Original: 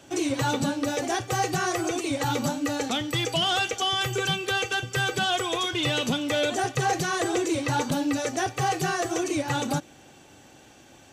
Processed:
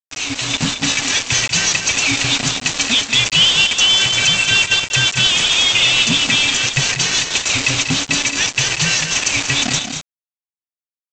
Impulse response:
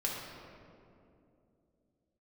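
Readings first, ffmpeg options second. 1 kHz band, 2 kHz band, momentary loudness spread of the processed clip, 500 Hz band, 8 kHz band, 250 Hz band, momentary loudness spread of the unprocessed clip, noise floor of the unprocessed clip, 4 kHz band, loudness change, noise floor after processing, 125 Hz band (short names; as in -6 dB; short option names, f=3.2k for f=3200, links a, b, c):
-1.0 dB, +13.0 dB, 7 LU, -3.5 dB, +16.5 dB, +1.5 dB, 3 LU, -52 dBFS, +16.0 dB, +12.5 dB, under -85 dBFS, +6.0 dB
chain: -filter_complex "[0:a]equalizer=f=630:t=o:w=0.33:g=-10,equalizer=f=1k:t=o:w=0.33:g=-10,equalizer=f=2.5k:t=o:w=0.33:g=6,acrossover=split=2300[a][b];[a]aeval=exprs='val(0)*(1-0.7/2+0.7/2*cos(2*PI*6.2*n/s))':c=same[c];[b]aeval=exprs='val(0)*(1-0.7/2-0.7/2*cos(2*PI*6.2*n/s))':c=same[d];[c][d]amix=inputs=2:normalize=0,afftfilt=real='re*(1-between(b*sr/4096,280,1500))':imag='im*(1-between(b*sr/4096,280,1500))':win_size=4096:overlap=0.75,anlmdn=0.00398,highshelf=f=2k:t=q:w=1.5:g=8.5,alimiter=limit=-17dB:level=0:latency=1:release=326,aresample=16000,acrusher=bits=4:mix=0:aa=0.000001,aresample=44100,dynaudnorm=f=140:g=7:m=8dB,aecho=1:1:189.5|221.6:0.316|0.355,volume=3.5dB"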